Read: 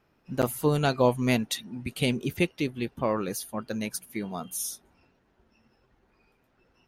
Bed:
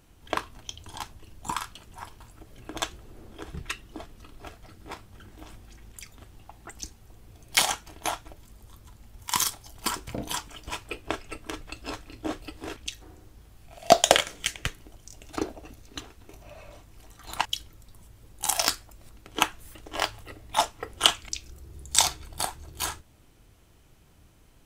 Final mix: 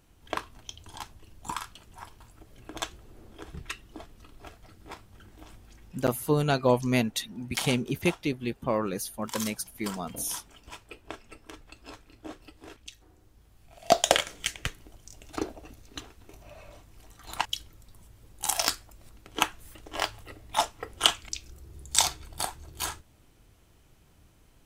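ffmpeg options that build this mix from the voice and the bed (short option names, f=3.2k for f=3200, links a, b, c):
-filter_complex "[0:a]adelay=5650,volume=-0.5dB[a];[1:a]volume=4.5dB,afade=t=out:st=5.84:d=0.24:silence=0.473151,afade=t=in:st=13.1:d=1.32:silence=0.398107[b];[a][b]amix=inputs=2:normalize=0"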